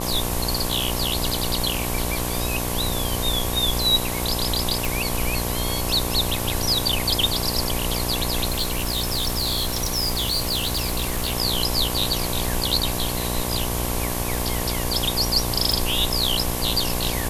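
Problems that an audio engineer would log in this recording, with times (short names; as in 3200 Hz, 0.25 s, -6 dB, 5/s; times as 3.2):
buzz 60 Hz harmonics 19 -28 dBFS
crackle 28/s -32 dBFS
4.85 pop
8.49–11.33 clipped -19 dBFS
15.72 pop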